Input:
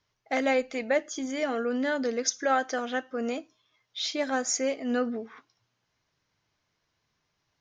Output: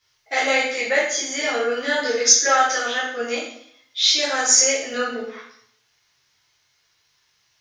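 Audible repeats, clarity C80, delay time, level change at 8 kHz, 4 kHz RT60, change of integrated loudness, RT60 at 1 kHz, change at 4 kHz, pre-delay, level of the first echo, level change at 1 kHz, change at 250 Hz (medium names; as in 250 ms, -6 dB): no echo, 6.5 dB, no echo, +16.5 dB, 0.65 s, +10.5 dB, 0.70 s, +15.5 dB, 5 ms, no echo, +8.0 dB, -3.0 dB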